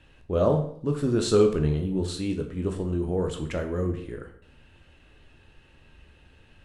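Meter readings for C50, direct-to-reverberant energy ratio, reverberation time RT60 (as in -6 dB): 9.5 dB, 4.0 dB, 0.60 s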